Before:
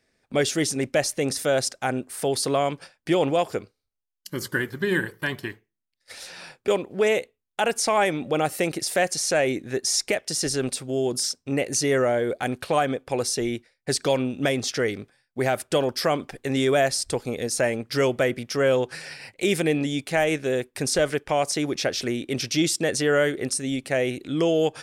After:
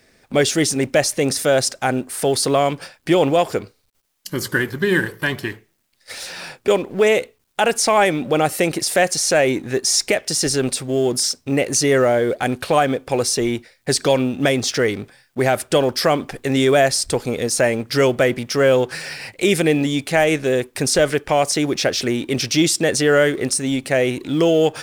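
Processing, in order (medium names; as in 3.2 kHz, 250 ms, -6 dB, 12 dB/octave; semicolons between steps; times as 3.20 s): companding laws mixed up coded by mu; trim +5.5 dB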